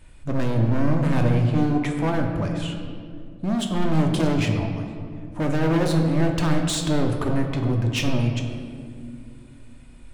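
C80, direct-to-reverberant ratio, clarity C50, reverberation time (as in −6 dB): 6.5 dB, 2.0 dB, 5.0 dB, 2.3 s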